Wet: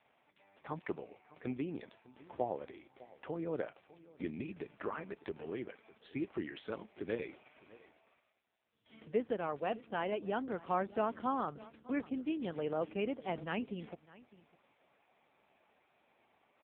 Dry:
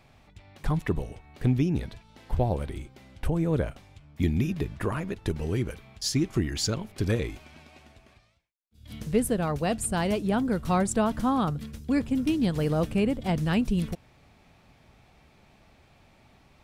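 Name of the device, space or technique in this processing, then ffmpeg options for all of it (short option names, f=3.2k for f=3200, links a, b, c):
satellite phone: -filter_complex "[0:a]acrossover=split=6300[a][b];[b]acompressor=threshold=-54dB:ratio=4:attack=1:release=60[c];[a][c]amix=inputs=2:normalize=0,highpass=360,lowpass=3.3k,aecho=1:1:604:0.0944,volume=-5.5dB" -ar 8000 -c:a libopencore_amrnb -b:a 5900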